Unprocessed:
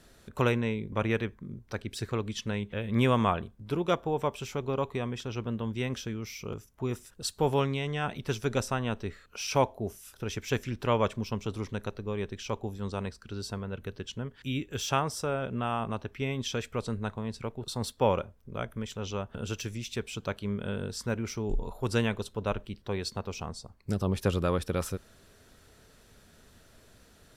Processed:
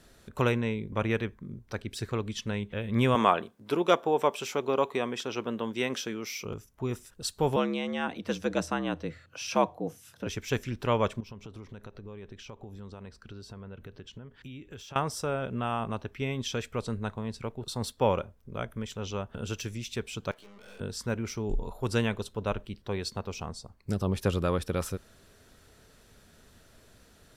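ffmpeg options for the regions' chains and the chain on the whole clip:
-filter_complex "[0:a]asettb=1/sr,asplit=3[a][b][c];[a]atrim=end=3.154[d];[b]atrim=start=3.15:end=6.45,asetpts=PTS-STARTPTS,afade=t=in:d=0.004:c=qsin,afade=t=out:st=3.296:d=0.004:c=qsin,highpass=290,acontrast=28[e];[c]atrim=start=6.446[f];[d][e]acrossfade=d=0.004:c1=hsin:c2=qsin[g];[g][f]acrossfade=d=0.004:c1=qsin:c2=hsin,asettb=1/sr,asplit=3[h][i][j];[h]atrim=end=7.564[k];[i]atrim=start=7.56:end=10.27,asetpts=PTS-STARTPTS,afade=t=in:d=0.004:c=qsin,afade=t=out:st=2.706:d=0.004:c=qsin,highshelf=f=8.2k:g=-9,afreqshift=74[l];[j]atrim=start=10.266[m];[k][l]acrossfade=d=0.004:c1=hsin:c2=qsin[n];[n][m]acrossfade=d=0.004:c1=qsin:c2=hsin,asettb=1/sr,asplit=3[o][p][q];[o]atrim=end=11.204[r];[p]atrim=start=11.2:end=14.96,asetpts=PTS-STARTPTS,afade=t=in:d=0.004:c=qsin,afade=t=out:st=3.756:d=0.004:c=qsin,acompressor=threshold=-40dB:ratio=8:attack=3.2:release=140:knee=1:detection=peak,equalizer=f=11k:w=0.38:g=-8[s];[q]atrim=start=14.956[t];[r][s]acrossfade=d=0.004:c1=hsin:c2=qsin[u];[u][t]acrossfade=d=0.004:c1=qsin:c2=hsin,asettb=1/sr,asplit=3[v][w][x];[v]atrim=end=20.314[y];[w]atrim=start=20.31:end=20.8,asetpts=PTS-STARTPTS,afade=t=in:d=0.004:c=qsin,afade=t=out:st=0.486:d=0.004:c=qsin,highpass=500,aeval=exprs='(tanh(316*val(0)+0.6)-tanh(0.6))/316':c=same,asplit=2[z][aa];[aa]adelay=16,volume=-2.5dB[ab];[z][ab]amix=inputs=2:normalize=0,atrim=end_sample=21609[ac];[x]atrim=start=20.796[ad];[y][ac]acrossfade=d=0.004:c1=hsin:c2=qsin[ae];[ae][ad]acrossfade=d=0.004:c1=qsin:c2=hsin"

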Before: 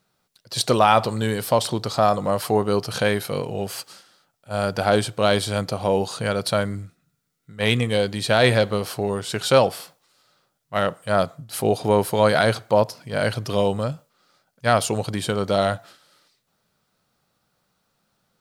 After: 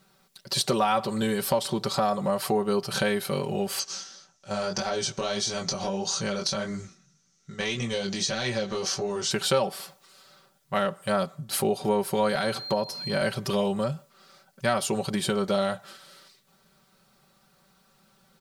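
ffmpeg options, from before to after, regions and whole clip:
-filter_complex "[0:a]asettb=1/sr,asplit=3[a][b][c];[a]atrim=end=3.794[d];[b]atrim=start=3.79:end=9.31,asetpts=PTS-STARTPTS,afade=t=in:d=0.004:c=qsin,afade=t=out:st=5.516:d=0.004:c=qsin,acompressor=threshold=-26dB:ratio=2.5:attack=3.2:release=140:knee=1:detection=peak,flanger=delay=16.5:depth=5.6:speed=1.7,lowpass=f=6.1k:t=q:w=7.3[e];[c]atrim=start=9.306[f];[d][e]acrossfade=d=0.004:c1=hsin:c2=qsin[g];[g][f]acrossfade=d=0.004:c1=qsin:c2=hsin,asettb=1/sr,asplit=3[h][i][j];[h]atrim=end=12.354[k];[i]atrim=start=12.35:end=13.22,asetpts=PTS-STARTPTS,afade=t=in:d=0.004:c=qsin,afade=t=out:st=0.866:d=0.004:c=qsin,highpass=57,acompressor=threshold=-19dB:ratio=2:attack=3.2:release=140:knee=1:detection=peak,aeval=exprs='val(0)+0.0126*sin(2*PI*4200*n/s)':c=same[l];[j]atrim=start=13.216[m];[k][l]acrossfade=d=0.004:c1=hsin:c2=qsin[n];[n][m]acrossfade=d=0.004:c1=qsin:c2=hsin,bandreject=f=660:w=12,aecho=1:1:5.2:0.75,acompressor=threshold=-34dB:ratio=2.5,volume=5.5dB"

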